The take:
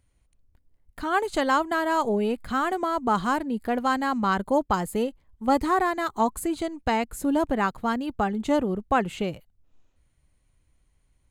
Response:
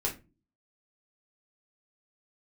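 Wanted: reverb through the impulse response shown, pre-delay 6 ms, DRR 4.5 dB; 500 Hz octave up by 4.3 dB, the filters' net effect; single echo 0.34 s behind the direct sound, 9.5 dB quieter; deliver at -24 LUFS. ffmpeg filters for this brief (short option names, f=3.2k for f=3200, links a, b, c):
-filter_complex "[0:a]equalizer=f=500:t=o:g=5.5,aecho=1:1:340:0.335,asplit=2[a][b];[1:a]atrim=start_sample=2205,adelay=6[c];[b][c]afir=irnorm=-1:irlink=0,volume=-9.5dB[d];[a][d]amix=inputs=2:normalize=0,volume=-2.5dB"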